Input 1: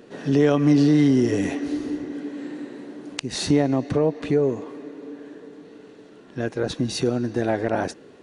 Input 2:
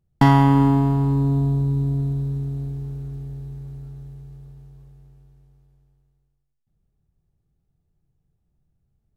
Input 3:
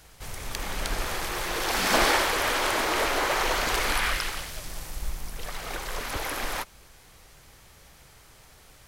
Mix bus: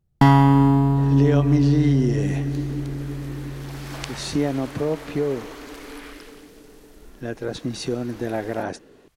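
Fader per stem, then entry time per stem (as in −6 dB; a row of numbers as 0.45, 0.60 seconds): −3.5, +0.5, −16.0 decibels; 0.85, 0.00, 2.00 seconds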